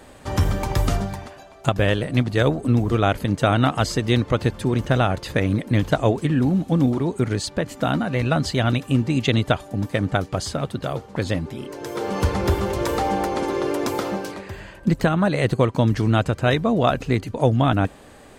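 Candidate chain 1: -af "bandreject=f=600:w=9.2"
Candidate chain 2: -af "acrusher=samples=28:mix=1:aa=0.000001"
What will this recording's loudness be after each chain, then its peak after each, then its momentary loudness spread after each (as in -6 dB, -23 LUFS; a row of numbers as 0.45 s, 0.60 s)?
-22.0 LUFS, -22.0 LUFS; -5.0 dBFS, -5.0 dBFS; 8 LU, 9 LU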